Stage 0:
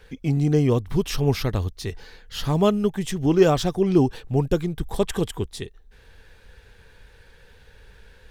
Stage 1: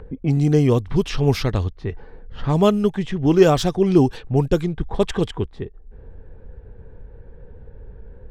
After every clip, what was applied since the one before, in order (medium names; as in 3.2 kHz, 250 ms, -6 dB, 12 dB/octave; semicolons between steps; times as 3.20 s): level-controlled noise filter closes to 440 Hz, open at -16.5 dBFS; in parallel at -3 dB: upward compressor, threshold -23 dBFS; on the sum: trim -1.5 dB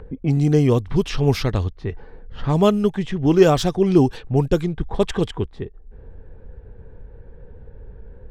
no audible change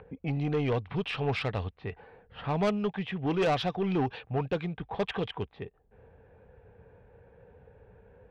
cabinet simulation 130–3700 Hz, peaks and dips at 150 Hz -5 dB, 240 Hz -8 dB, 350 Hz -9 dB, 740 Hz +4 dB, 2.5 kHz +6 dB; saturation -17.5 dBFS, distortion -11 dB; trim -4.5 dB